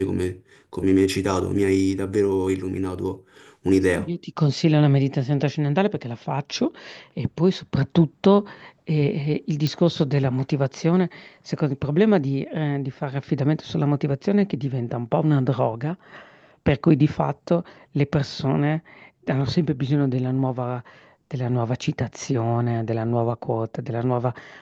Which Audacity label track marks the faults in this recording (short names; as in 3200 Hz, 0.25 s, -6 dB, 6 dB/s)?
9.670000	9.670000	pop -13 dBFS